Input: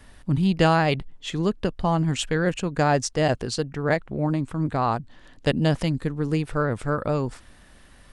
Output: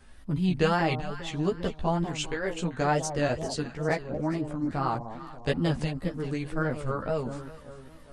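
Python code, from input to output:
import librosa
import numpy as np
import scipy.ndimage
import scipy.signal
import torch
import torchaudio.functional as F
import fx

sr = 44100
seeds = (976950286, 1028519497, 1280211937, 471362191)

y = fx.peak_eq(x, sr, hz=180.0, db=-12.5, octaves=0.77, at=(2.04, 2.55))
y = fx.echo_alternate(y, sr, ms=198, hz=920.0, feedback_pct=63, wet_db=-9)
y = fx.chorus_voices(y, sr, voices=6, hz=0.5, base_ms=14, depth_ms=2.5, mix_pct=45)
y = fx.wow_flutter(y, sr, seeds[0], rate_hz=2.1, depth_cents=120.0)
y = F.gain(torch.from_numpy(y), -2.5).numpy()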